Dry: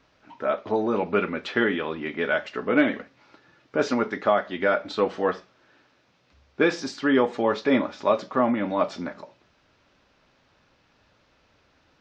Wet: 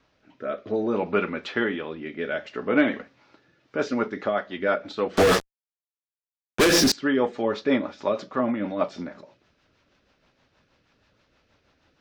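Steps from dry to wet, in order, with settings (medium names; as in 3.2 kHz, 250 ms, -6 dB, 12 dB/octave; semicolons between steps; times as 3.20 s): 5.17–6.92 s: fuzz box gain 41 dB, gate -43 dBFS; rotary cabinet horn 0.6 Hz, later 6.3 Hz, at 3.35 s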